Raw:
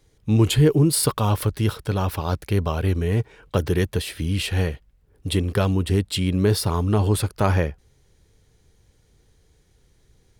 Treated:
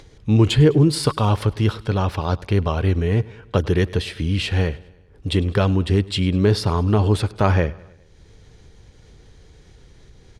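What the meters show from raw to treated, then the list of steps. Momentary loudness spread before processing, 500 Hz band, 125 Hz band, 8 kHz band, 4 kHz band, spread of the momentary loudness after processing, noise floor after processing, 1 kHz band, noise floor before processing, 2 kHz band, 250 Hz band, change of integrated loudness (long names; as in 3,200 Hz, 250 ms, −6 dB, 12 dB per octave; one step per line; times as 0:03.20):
9 LU, +2.5 dB, +2.5 dB, −7.0 dB, +1.5 dB, 8 LU, −50 dBFS, +2.5 dB, −61 dBFS, +2.5 dB, +2.5 dB, +2.0 dB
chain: low-pass filter 5,600 Hz 12 dB per octave
upward compression, threshold −39 dBFS
on a send: repeating echo 102 ms, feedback 57%, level −22 dB
on the sum: level +2.5 dB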